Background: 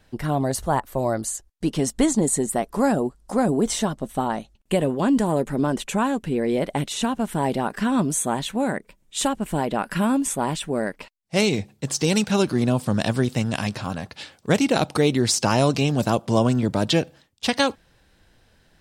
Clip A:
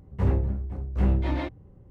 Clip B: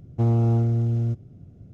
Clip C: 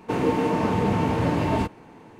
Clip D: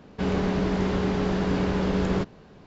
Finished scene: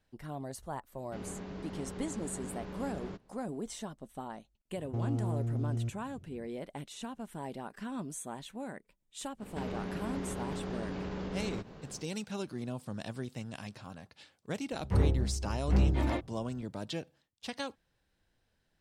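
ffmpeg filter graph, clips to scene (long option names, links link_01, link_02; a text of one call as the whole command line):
ffmpeg -i bed.wav -i cue0.wav -i cue1.wav -i cue2.wav -i cue3.wav -filter_complex "[4:a]asplit=2[link_01][link_02];[0:a]volume=-18dB[link_03];[2:a]acompressor=threshold=-22dB:ratio=6:attack=3.2:release=140:knee=1:detection=peak[link_04];[link_02]acompressor=threshold=-35dB:ratio=6:attack=3.2:release=140:knee=1:detection=peak[link_05];[link_01]atrim=end=2.66,asetpts=PTS-STARTPTS,volume=-18dB,afade=type=in:duration=0.004:curve=hsin,afade=type=out:start_time=2.656:duration=0.004:curve=hsin,adelay=930[link_06];[link_04]atrim=end=1.73,asetpts=PTS-STARTPTS,volume=-7.5dB,afade=type=in:duration=0.004:curve=hsin,afade=type=out:start_time=1.726:duration=0.004:curve=hsin,adelay=4750[link_07];[link_05]atrim=end=2.66,asetpts=PTS-STARTPTS,volume=-0.5dB,afade=type=in:duration=0.05,afade=type=out:start_time=2.61:duration=0.05,adelay=413658S[link_08];[1:a]atrim=end=1.9,asetpts=PTS-STARTPTS,volume=-3.5dB,afade=type=in:duration=0.004:curve=hsin,afade=type=out:start_time=1.896:duration=0.004:curve=hsin,adelay=14720[link_09];[link_03][link_06][link_07][link_08][link_09]amix=inputs=5:normalize=0" out.wav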